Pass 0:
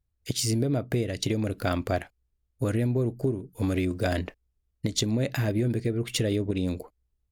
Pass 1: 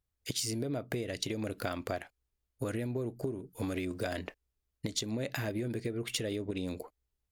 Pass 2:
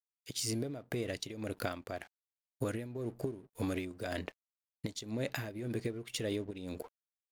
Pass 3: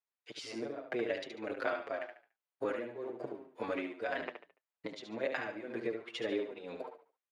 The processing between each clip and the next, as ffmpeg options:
-af "lowshelf=f=230:g=-9.5,acompressor=threshold=0.0282:ratio=6"
-af "aeval=exprs='sgn(val(0))*max(abs(val(0))-0.00133,0)':c=same,tremolo=f=1.9:d=0.68,volume=1.12"
-filter_complex "[0:a]highpass=470,lowpass=2200,aecho=1:1:72|144|216|288:0.447|0.143|0.0457|0.0146,asplit=2[s0][s1];[s1]adelay=6.7,afreqshift=-2.7[s2];[s0][s2]amix=inputs=2:normalize=1,volume=2.51"

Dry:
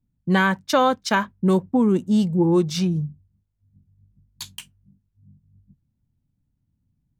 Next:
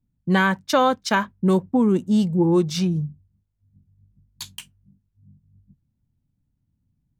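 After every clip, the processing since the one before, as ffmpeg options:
-af anull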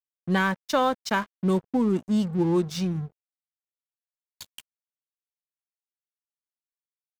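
-af "aeval=exprs='sgn(val(0))*max(abs(val(0))-0.015,0)':c=same,volume=0.631"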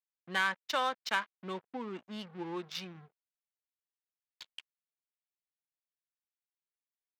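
-af "bandpass=f=3000:t=q:w=0.76:csg=0,adynamicsmooth=sensitivity=5.5:basefreq=2800"

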